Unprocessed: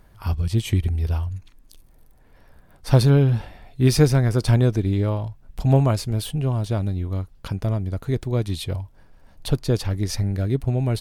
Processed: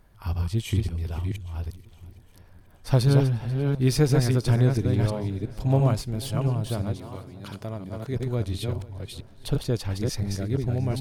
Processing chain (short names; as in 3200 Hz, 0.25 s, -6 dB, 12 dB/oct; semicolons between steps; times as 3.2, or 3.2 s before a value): reverse delay 0.341 s, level -3.5 dB; 6.94–8.13 HPF 540 Hz -> 170 Hz 6 dB/oct; on a send: swung echo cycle 0.812 s, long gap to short 1.5:1, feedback 39%, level -20.5 dB; on the sum: gain -5 dB